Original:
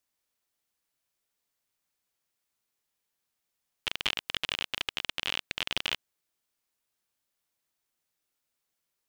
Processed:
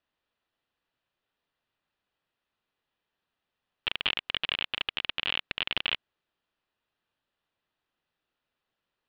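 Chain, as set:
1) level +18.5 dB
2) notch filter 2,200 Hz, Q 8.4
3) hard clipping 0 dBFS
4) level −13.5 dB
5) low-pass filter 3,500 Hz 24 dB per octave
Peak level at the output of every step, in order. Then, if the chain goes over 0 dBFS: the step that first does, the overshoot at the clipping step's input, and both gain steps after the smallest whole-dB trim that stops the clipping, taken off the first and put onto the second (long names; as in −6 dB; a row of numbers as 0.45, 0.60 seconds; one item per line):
+9.0, +8.0, 0.0, −13.5, −13.0 dBFS
step 1, 8.0 dB
step 1 +10.5 dB, step 4 −5.5 dB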